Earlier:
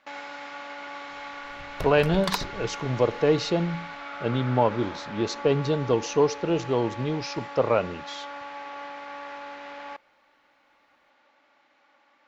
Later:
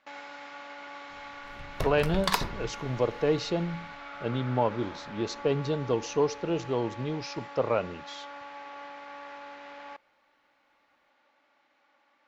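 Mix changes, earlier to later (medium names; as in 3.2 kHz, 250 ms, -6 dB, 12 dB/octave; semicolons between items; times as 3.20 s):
speech -4.5 dB; first sound -5.0 dB; reverb: on, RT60 0.60 s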